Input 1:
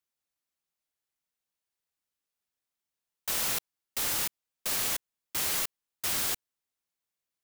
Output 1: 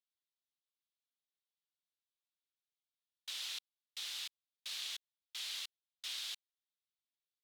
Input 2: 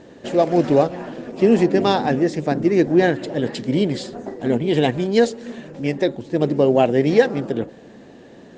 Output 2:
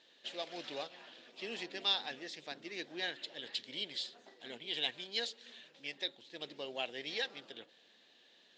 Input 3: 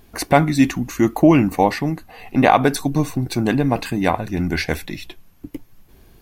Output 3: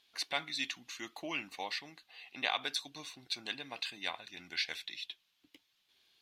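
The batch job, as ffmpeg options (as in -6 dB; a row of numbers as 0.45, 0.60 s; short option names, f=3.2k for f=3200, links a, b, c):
-af "bandpass=f=3.6k:t=q:w=2.9:csg=0,volume=-2dB"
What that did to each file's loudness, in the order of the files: -13.0, -20.5, -20.0 LU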